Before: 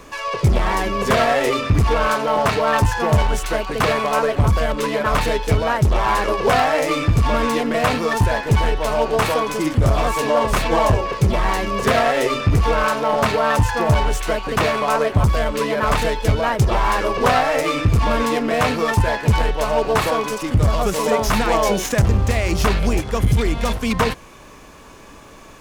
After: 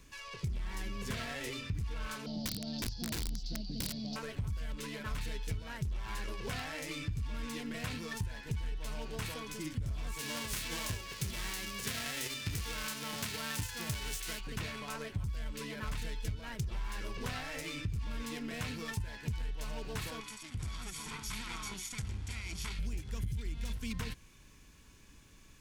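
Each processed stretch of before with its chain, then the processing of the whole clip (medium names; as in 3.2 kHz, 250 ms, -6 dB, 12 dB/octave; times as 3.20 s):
2.26–4.16 s: FFT filter 100 Hz 0 dB, 200 Hz +12 dB, 290 Hz +6 dB, 440 Hz -8 dB, 690 Hz +3 dB, 1.1 kHz -26 dB, 2.4 kHz -18 dB, 4.7 kHz +12 dB, 9.4 kHz -29 dB, 14 kHz -19 dB + integer overflow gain 10 dB
10.19–14.39 s: formants flattened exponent 0.6 + high-pass 93 Hz 6 dB/octave + upward compressor, threshold -20 dBFS
20.20–22.79 s: comb filter that takes the minimum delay 0.88 ms + Chebyshev low-pass 12 kHz, order 8 + bass shelf 280 Hz -10.5 dB
whole clip: amplifier tone stack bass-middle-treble 6-0-2; band-stop 1.2 kHz, Q 9.8; compression 6:1, threshold -35 dBFS; trim +1.5 dB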